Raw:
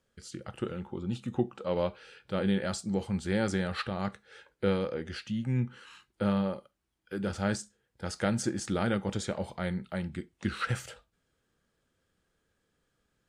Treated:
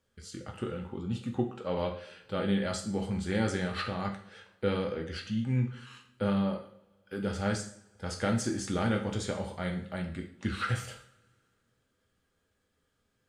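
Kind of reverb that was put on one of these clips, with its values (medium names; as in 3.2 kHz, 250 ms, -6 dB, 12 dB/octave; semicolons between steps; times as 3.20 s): two-slope reverb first 0.51 s, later 2.3 s, from -26 dB, DRR 2 dB; trim -2 dB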